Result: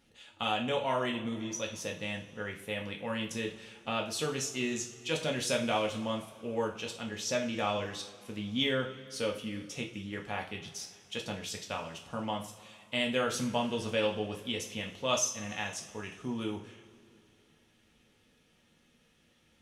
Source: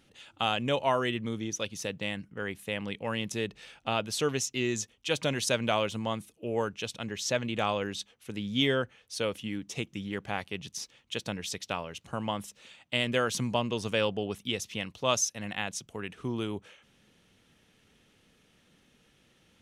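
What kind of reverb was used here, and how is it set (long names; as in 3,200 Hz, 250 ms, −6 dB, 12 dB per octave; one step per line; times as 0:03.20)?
coupled-rooms reverb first 0.38 s, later 2.9 s, from −20 dB, DRR 0 dB
level −5.5 dB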